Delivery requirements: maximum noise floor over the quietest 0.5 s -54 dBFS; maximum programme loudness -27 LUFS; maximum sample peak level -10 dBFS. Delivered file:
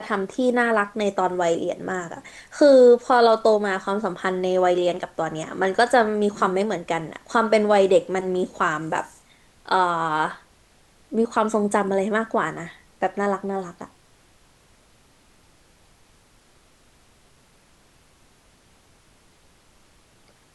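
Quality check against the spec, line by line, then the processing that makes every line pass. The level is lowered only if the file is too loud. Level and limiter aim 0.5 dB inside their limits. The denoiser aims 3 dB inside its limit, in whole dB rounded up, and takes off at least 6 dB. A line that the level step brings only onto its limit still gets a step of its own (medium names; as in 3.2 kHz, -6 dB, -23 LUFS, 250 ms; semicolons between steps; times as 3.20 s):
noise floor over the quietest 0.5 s -57 dBFS: pass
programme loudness -21.5 LUFS: fail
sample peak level -6.0 dBFS: fail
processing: trim -6 dB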